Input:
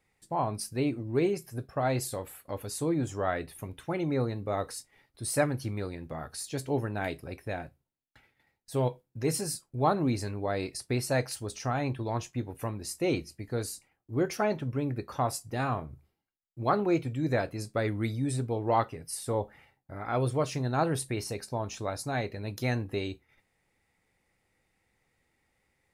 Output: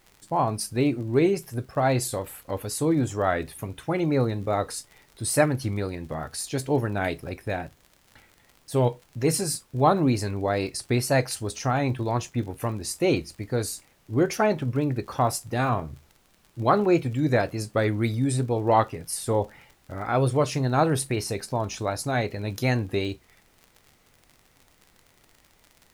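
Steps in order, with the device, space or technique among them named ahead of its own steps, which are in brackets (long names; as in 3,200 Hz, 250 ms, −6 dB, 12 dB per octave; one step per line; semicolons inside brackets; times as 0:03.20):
vinyl LP (tape wow and flutter; surface crackle 50 per second −44 dBFS; pink noise bed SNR 36 dB)
level +6 dB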